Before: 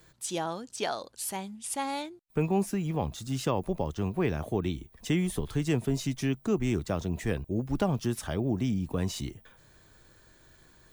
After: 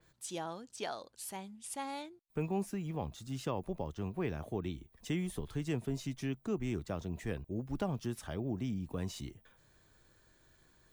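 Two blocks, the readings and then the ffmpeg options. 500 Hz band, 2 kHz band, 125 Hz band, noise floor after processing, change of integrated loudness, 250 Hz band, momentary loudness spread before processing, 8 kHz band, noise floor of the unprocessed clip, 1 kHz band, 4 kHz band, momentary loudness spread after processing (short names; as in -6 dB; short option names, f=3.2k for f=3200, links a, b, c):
-8.0 dB, -8.0 dB, -8.0 dB, -68 dBFS, -8.0 dB, -8.0 dB, 6 LU, -9.0 dB, -60 dBFS, -8.0 dB, -8.5 dB, 7 LU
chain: -af "adynamicequalizer=threshold=0.00251:dfrequency=4200:dqfactor=0.7:tfrequency=4200:tqfactor=0.7:attack=5:release=100:ratio=0.375:range=1.5:mode=cutabove:tftype=highshelf,volume=-8dB"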